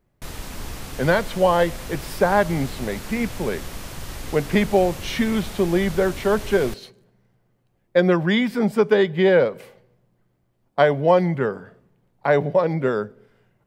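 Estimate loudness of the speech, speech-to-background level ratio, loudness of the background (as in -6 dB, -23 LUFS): -21.0 LUFS, 14.5 dB, -35.5 LUFS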